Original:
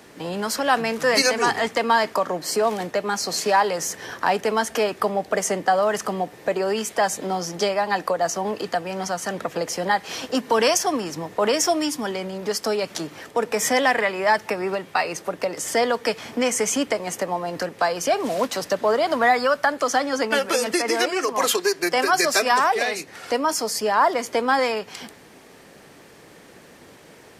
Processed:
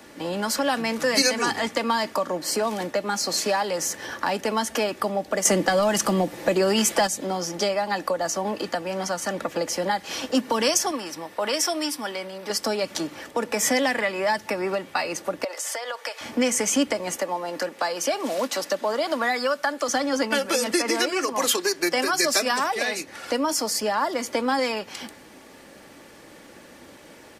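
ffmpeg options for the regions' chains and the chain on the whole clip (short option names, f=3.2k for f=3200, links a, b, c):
-filter_complex "[0:a]asettb=1/sr,asplit=3[a][b][c];[a]atrim=end=5.454[d];[b]atrim=start=5.45:end=7.07,asetpts=PTS-STARTPTS,afade=t=in:d=0.004:c=qsin,afade=t=out:st=1.616:d=0.004:c=qsin,acontrast=87,aecho=1:1:5.9:0.31,atrim=end_sample=71442[e];[c]atrim=start=7.066[f];[d][e]acrossfade=d=0.004:c1=hsin:c2=qsin[g];[g][f]acrossfade=d=0.004:c1=qsin:c2=hsin,asettb=1/sr,asplit=3[h][i][j];[h]atrim=end=10.914[k];[i]atrim=start=10.91:end=12.5,asetpts=PTS-STARTPTS,afade=t=in:d=0.004:c=qsin,afade=t=out:st=1.586:d=0.004:c=qsin,lowshelf=f=460:g=-11,bandreject=f=6.8k:w=5.7[l];[j]atrim=start=12.496[m];[k][l]acrossfade=d=0.004:c1=hsin:c2=qsin[n];[n][m]acrossfade=d=0.004:c1=qsin:c2=hsin,asettb=1/sr,asplit=3[o][p][q];[o]atrim=end=15.444[r];[p]atrim=start=15.44:end=16.21,asetpts=PTS-STARTPTS,afade=t=in:d=0.004:c=qsin,afade=t=out:st=0.766:d=0.004:c=qsin,highpass=f=550:w=0.5412,highpass=f=550:w=1.3066,acompressor=threshold=-26dB:ratio=12:attack=3.2:release=140:knee=1:detection=peak[s];[q]atrim=start=16.206[t];[r][s]acrossfade=d=0.004:c1=hsin:c2=qsin[u];[u][t]acrossfade=d=0.004:c1=qsin:c2=hsin,asettb=1/sr,asplit=3[v][w][x];[v]atrim=end=17.164[y];[w]atrim=start=17.16:end=19.89,asetpts=PTS-STARTPTS,afade=t=in:d=0.004:c=qsin,afade=t=out:st=2.726:d=0.004:c=qsin,highpass=180,lowshelf=f=340:g=-5[z];[x]atrim=start=19.886[aa];[y][z]acrossfade=d=0.004:c1=hsin:c2=qsin[ab];[ab][aa]acrossfade=d=0.004:c1=qsin:c2=hsin,aecho=1:1:3.5:0.39,acrossover=split=340|3000[ac][ad][ae];[ad]acompressor=threshold=-24dB:ratio=3[af];[ac][af][ae]amix=inputs=3:normalize=0"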